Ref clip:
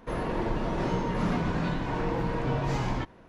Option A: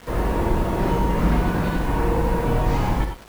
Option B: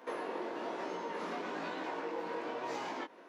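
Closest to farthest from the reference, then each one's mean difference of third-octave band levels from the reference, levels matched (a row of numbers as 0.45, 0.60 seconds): A, B; 5.0, 6.5 decibels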